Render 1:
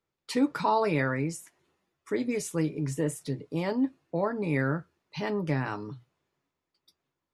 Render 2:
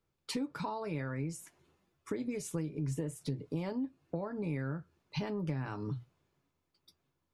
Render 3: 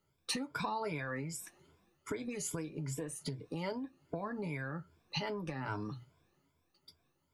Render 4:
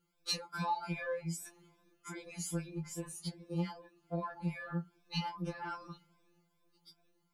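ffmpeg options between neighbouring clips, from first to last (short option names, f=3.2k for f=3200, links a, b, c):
-af "acompressor=threshold=-36dB:ratio=10,lowshelf=f=170:g=10.5,bandreject=f=1.9k:w=15"
-filter_complex "[0:a]afftfilt=real='re*pow(10,12/40*sin(2*PI*(1.7*log(max(b,1)*sr/1024/100)/log(2)-(2.5)*(pts-256)/sr)))':imag='im*pow(10,12/40*sin(2*PI*(1.7*log(max(b,1)*sr/1024/100)/log(2)-(2.5)*(pts-256)/sr)))':win_size=1024:overlap=0.75,acrossover=split=670[a][b];[a]acompressor=threshold=-41dB:ratio=6[c];[c][b]amix=inputs=2:normalize=0,volume=2.5dB"
-filter_complex "[0:a]asplit=2[a][b];[b]asoftclip=type=tanh:threshold=-36.5dB,volume=-10dB[c];[a][c]amix=inputs=2:normalize=0,afftfilt=real='re*2.83*eq(mod(b,8),0)':imag='im*2.83*eq(mod(b,8),0)':win_size=2048:overlap=0.75"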